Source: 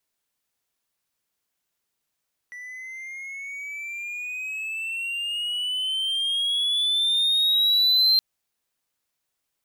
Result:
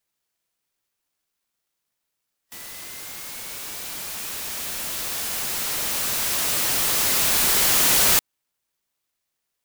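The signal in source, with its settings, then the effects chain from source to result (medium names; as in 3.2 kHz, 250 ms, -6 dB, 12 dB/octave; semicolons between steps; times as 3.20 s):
gliding synth tone triangle, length 5.67 s, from 1.96 kHz, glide +13 st, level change +21 dB, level -13 dB
FFT band-pass 1.9–12 kHz; treble shelf 7.6 kHz +9 dB; sampling jitter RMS 0.14 ms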